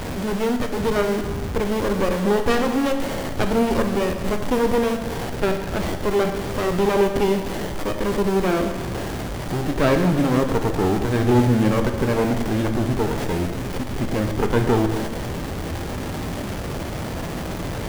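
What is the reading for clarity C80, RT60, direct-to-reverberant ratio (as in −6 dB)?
8.0 dB, 1.5 s, 4.5 dB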